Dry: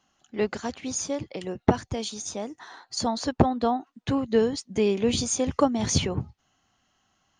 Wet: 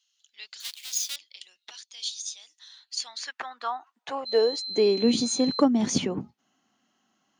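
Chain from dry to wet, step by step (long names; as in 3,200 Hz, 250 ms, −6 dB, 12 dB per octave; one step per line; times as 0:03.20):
0:00.60–0:01.16: each half-wave held at its own peak
0:04.25–0:05.60: steady tone 4,100 Hz −29 dBFS
in parallel at −9 dB: hard clipping −12.5 dBFS, distortion −16 dB
on the sum: high-pass filter sweep 3,700 Hz → 230 Hz, 0:02.72–0:05.13
level −5.5 dB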